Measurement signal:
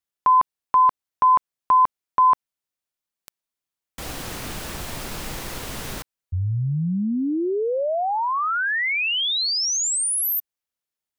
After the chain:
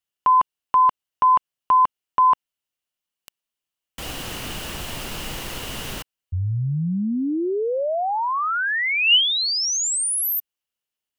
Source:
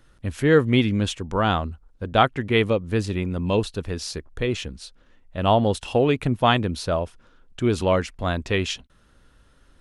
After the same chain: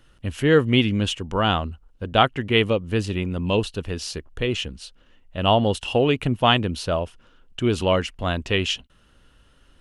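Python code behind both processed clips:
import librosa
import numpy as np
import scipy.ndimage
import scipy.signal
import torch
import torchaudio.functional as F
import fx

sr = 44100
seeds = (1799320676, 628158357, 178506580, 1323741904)

y = fx.peak_eq(x, sr, hz=2900.0, db=10.5, octaves=0.22)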